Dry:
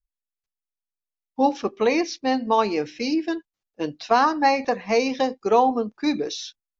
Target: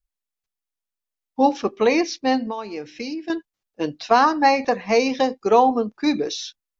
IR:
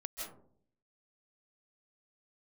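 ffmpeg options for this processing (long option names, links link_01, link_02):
-filter_complex "[0:a]asettb=1/sr,asplit=3[link_01][link_02][link_03];[link_01]atrim=end=2.464[link_04];[link_02]atrim=start=2.46:end=3.3,asetpts=PTS-STARTPTS,afade=type=in:duration=0.004:curve=qsin,afade=type=out:start_time=0.836:duration=0.004:curve=qsin,acompressor=threshold=-30dB:ratio=6[link_05];[link_03]atrim=start=3.296[link_06];[link_04][link_05]acrossfade=duration=0.004:curve1=hsin:curve2=qsin[link_07];[link_07][link_06]acrossfade=duration=0.004:curve1=qsin:curve2=hsin,volume=2.5dB"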